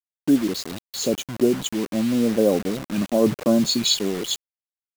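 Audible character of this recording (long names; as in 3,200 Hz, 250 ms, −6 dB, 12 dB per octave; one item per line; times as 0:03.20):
phaser sweep stages 2, 0.95 Hz, lowest notch 670–1,900 Hz
a quantiser's noise floor 6 bits, dither none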